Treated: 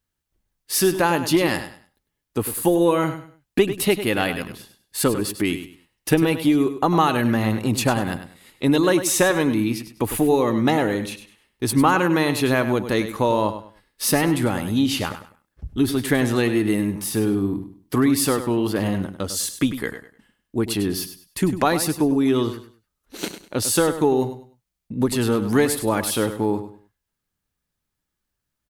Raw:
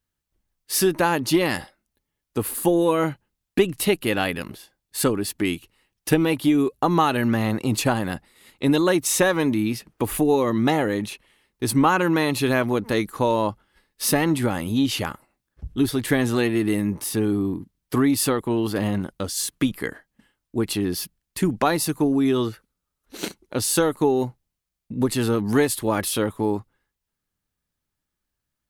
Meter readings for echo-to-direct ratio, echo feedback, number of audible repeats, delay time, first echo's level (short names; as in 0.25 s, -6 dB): -10.5 dB, 26%, 3, 0.1 s, -11.0 dB